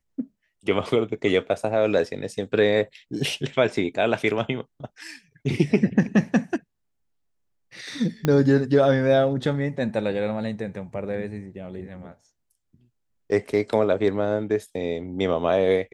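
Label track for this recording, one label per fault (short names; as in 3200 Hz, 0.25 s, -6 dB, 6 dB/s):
8.250000	8.250000	pop -9 dBFS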